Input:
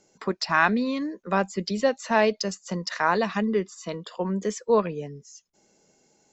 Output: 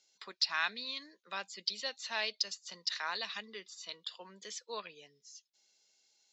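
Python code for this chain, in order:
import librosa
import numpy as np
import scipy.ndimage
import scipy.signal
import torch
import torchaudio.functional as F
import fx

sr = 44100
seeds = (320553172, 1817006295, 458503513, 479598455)

y = fx.bandpass_q(x, sr, hz=3900.0, q=2.8)
y = y * 10.0 ** (3.5 / 20.0)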